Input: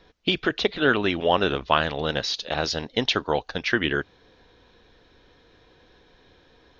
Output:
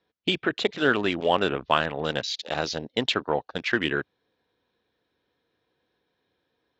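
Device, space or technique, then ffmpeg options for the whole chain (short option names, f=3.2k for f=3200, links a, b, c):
over-cleaned archive recording: -af "highpass=110,lowpass=6k,afwtdn=0.0158,volume=-1.5dB"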